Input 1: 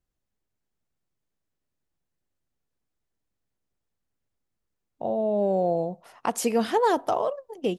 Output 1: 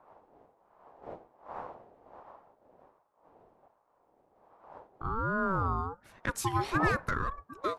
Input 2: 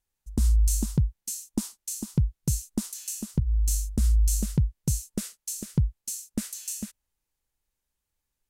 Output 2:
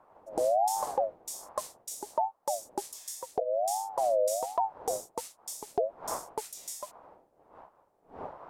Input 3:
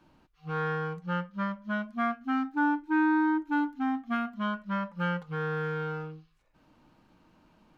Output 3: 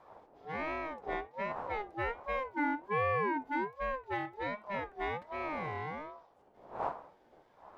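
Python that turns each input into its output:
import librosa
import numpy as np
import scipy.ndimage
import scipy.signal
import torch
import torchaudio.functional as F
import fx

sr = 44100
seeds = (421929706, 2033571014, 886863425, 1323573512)

y = fx.dmg_wind(x, sr, seeds[0], corner_hz=270.0, level_db=-43.0)
y = fx.ring_lfo(y, sr, carrier_hz=700.0, swing_pct=20, hz=1.3)
y = y * librosa.db_to_amplitude(-3.5)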